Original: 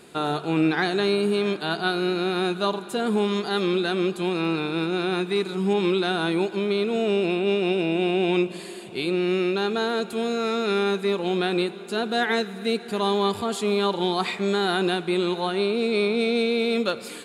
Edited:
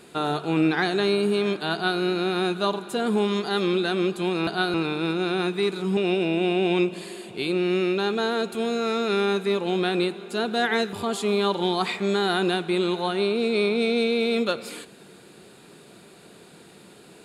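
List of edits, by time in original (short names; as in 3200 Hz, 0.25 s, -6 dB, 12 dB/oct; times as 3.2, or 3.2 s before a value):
1.73–2 copy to 4.47
5.7–7.55 cut
12.51–13.32 cut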